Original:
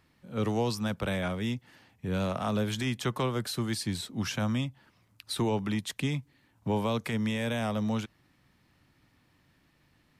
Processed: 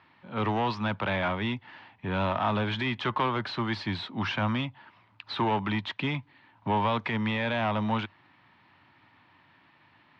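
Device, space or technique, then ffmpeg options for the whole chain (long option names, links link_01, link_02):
overdrive pedal into a guitar cabinet: -filter_complex "[0:a]asplit=2[link_01][link_02];[link_02]highpass=frequency=720:poles=1,volume=16dB,asoftclip=type=tanh:threshold=-19dB[link_03];[link_01][link_03]amix=inputs=2:normalize=0,lowpass=frequency=3500:poles=1,volume=-6dB,highpass=86,equalizer=frequency=100:width_type=q:width=4:gain=8,equalizer=frequency=480:width_type=q:width=4:gain=-7,equalizer=frequency=940:width_type=q:width=4:gain=7,lowpass=frequency=3700:width=0.5412,lowpass=frequency=3700:width=1.3066"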